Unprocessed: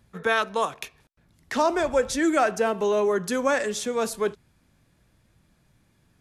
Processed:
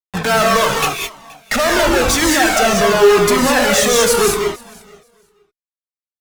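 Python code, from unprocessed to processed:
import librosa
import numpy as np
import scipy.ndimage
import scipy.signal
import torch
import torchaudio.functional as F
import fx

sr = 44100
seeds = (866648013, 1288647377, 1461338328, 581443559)

y = fx.highpass(x, sr, hz=1300.0, slope=6, at=(2.15, 2.6))
y = fx.fuzz(y, sr, gain_db=45.0, gate_db=-43.0)
y = fx.echo_feedback(y, sr, ms=475, feedback_pct=15, wet_db=-23.0)
y = fx.rev_gated(y, sr, seeds[0], gate_ms=230, shape='rising', drr_db=0.0)
y = fx.comb_cascade(y, sr, direction='falling', hz=0.89)
y = y * librosa.db_to_amplitude(3.0)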